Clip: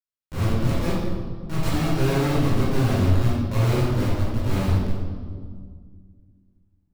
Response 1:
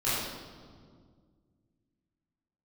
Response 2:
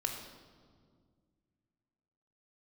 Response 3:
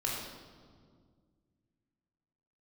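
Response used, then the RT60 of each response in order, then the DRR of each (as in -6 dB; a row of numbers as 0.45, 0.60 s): 1; 1.9, 1.9, 1.9 s; -12.5, 2.5, -3.5 dB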